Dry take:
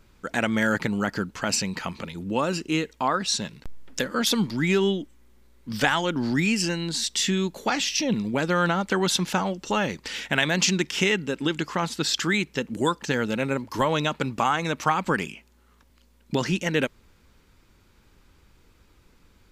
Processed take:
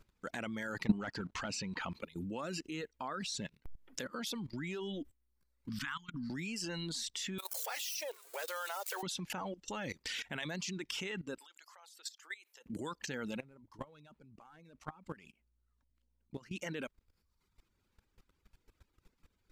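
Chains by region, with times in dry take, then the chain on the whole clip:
0:00.85–0:01.94: leveller curve on the samples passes 2 + high-frequency loss of the air 73 metres
0:05.69–0:06.30: downward compressor 3 to 1, threshold −27 dBFS + elliptic band-stop filter 260–1,100 Hz, stop band 50 dB + high-shelf EQ 2,900 Hz −6.5 dB
0:07.38–0:09.03: spike at every zero crossing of −20 dBFS + Butterworth high-pass 460 Hz 48 dB per octave
0:11.38–0:12.66: high-pass filter 560 Hz 24 dB per octave + high-shelf EQ 6,300 Hz +11.5 dB + downward compressor 4 to 1, threshold −38 dBFS
0:13.40–0:16.52: variable-slope delta modulation 64 kbit/s + spectral tilt −2 dB per octave + output level in coarse steps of 19 dB
whole clip: reverb reduction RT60 0.88 s; output level in coarse steps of 19 dB; level −2 dB

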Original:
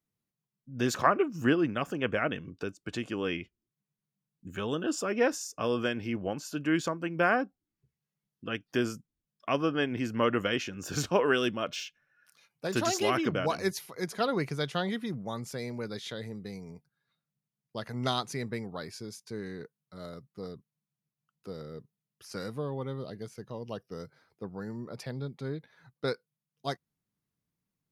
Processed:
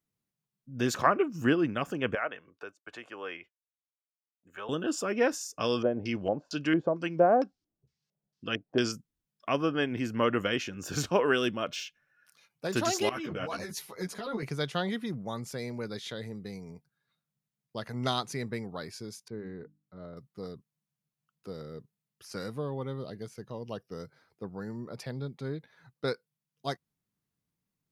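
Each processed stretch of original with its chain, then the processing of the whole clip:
0:02.15–0:04.69: downward expander −58 dBFS + three-way crossover with the lows and the highs turned down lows −22 dB, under 510 Hz, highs −12 dB, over 2,200 Hz
0:05.60–0:08.92: high-shelf EQ 4,600 Hz +9.5 dB + auto-filter low-pass square 2.2 Hz 640–5,000 Hz
0:13.09–0:14.43: compressor whose output falls as the input rises −32 dBFS + string-ensemble chorus
0:19.28–0:20.17: head-to-tape spacing loss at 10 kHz 40 dB + mains-hum notches 50/100/150/200/250/300 Hz
whole clip: no processing

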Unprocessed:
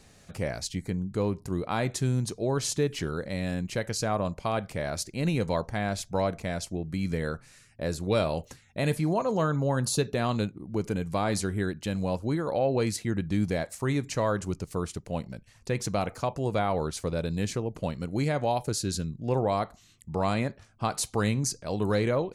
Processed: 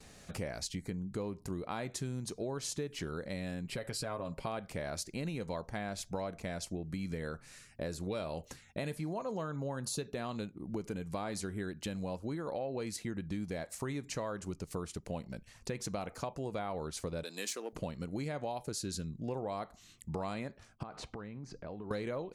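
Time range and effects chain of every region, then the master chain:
0:03.65–0:04.47: parametric band 6,300 Hz −13.5 dB 0.24 octaves + comb filter 7.4 ms, depth 54% + downward compressor 2.5 to 1, threshold −29 dBFS
0:17.23–0:17.73: gain on one half-wave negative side −3 dB + high-pass filter 240 Hz 24 dB per octave + spectral tilt +3 dB per octave
0:20.83–0:21.91: low-pass filter 2,000 Hz + downward compressor 10 to 1, threshold −40 dBFS
whole clip: noise gate with hold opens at −49 dBFS; parametric band 110 Hz −5.5 dB 0.59 octaves; downward compressor 5 to 1, threshold −37 dBFS; level +1 dB

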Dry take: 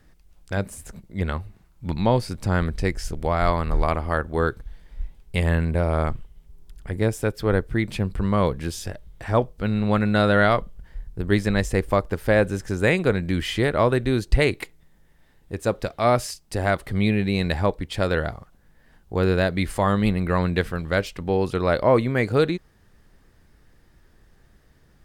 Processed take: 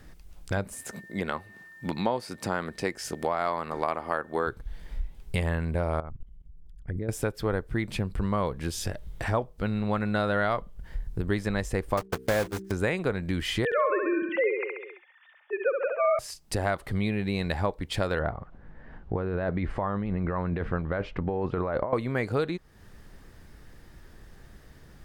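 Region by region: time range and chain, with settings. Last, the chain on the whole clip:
0:00.73–0:04.46: high-pass filter 230 Hz + steady tone 1,800 Hz −53 dBFS
0:06.00–0:07.09: spectral envelope exaggerated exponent 1.5 + output level in coarse steps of 17 dB
0:11.97–0:12.73: one scale factor per block 3 bits + noise gate −27 dBFS, range −26 dB + hum removal 64.59 Hz, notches 7
0:13.65–0:16.19: three sine waves on the formant tracks + high-shelf EQ 2,000 Hz +8.5 dB + repeating echo 67 ms, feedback 52%, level −5.5 dB
0:18.19–0:21.93: low-pass filter 1,700 Hz + compressor whose output falls as the input rises −25 dBFS
whole clip: dynamic equaliser 950 Hz, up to +5 dB, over −33 dBFS, Q 0.86; downward compressor 3 to 1, threshold −35 dBFS; level +6 dB

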